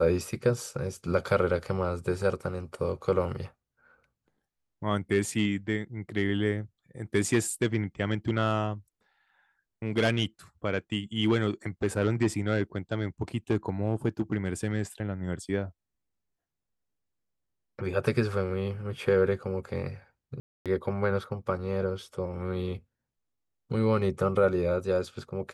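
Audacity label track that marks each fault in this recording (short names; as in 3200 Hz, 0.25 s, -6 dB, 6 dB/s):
20.400000	20.660000	gap 0.257 s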